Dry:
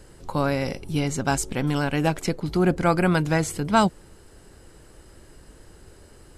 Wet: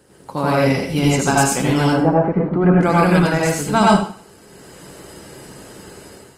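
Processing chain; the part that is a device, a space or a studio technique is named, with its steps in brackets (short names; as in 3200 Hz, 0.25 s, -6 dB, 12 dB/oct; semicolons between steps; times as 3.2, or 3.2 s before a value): 1.83–2.8 LPF 1000 Hz -> 2300 Hz 24 dB/oct; far-field microphone of a smart speaker (reverb RT60 0.50 s, pre-delay 75 ms, DRR -4 dB; HPF 140 Hz 12 dB/oct; AGC gain up to 10 dB; gain -1 dB; Opus 24 kbps 48000 Hz)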